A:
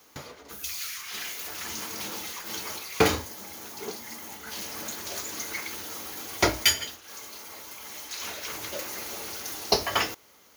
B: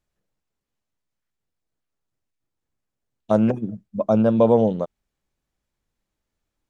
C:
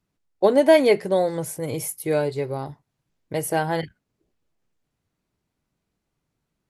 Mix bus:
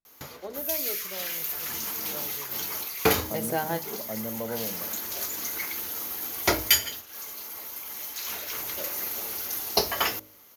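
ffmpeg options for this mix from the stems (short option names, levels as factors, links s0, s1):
-filter_complex "[0:a]equalizer=f=13000:t=o:w=0.35:g=15,adelay=50,volume=0.891[s0];[1:a]volume=0.133,asplit=2[s1][s2];[2:a]volume=0.562[s3];[s2]apad=whole_len=295200[s4];[s3][s4]sidechaingate=range=0.158:threshold=0.00316:ratio=16:detection=peak[s5];[s0][s1][s5]amix=inputs=3:normalize=0,bandreject=f=52.12:t=h:w=4,bandreject=f=104.24:t=h:w=4,bandreject=f=156.36:t=h:w=4,bandreject=f=208.48:t=h:w=4,bandreject=f=260.6:t=h:w=4,bandreject=f=312.72:t=h:w=4,bandreject=f=364.84:t=h:w=4,bandreject=f=416.96:t=h:w=4,bandreject=f=469.08:t=h:w=4,bandreject=f=521.2:t=h:w=4,bandreject=f=573.32:t=h:w=4,bandreject=f=625.44:t=h:w=4"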